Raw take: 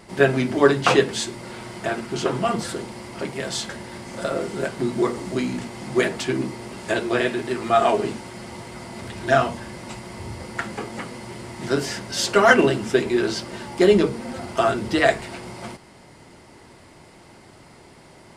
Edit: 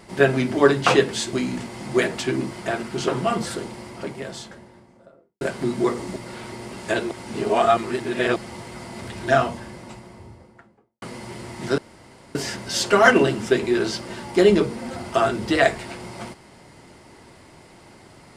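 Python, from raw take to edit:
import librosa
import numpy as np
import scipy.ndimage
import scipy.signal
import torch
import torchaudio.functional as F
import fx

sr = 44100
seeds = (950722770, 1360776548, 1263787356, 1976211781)

y = fx.studio_fade_out(x, sr, start_s=2.68, length_s=1.91)
y = fx.studio_fade_out(y, sr, start_s=9.2, length_s=1.82)
y = fx.edit(y, sr, fx.swap(start_s=1.33, length_s=0.36, other_s=5.34, other_length_s=1.18),
    fx.reverse_span(start_s=7.11, length_s=1.25),
    fx.insert_room_tone(at_s=11.78, length_s=0.57), tone=tone)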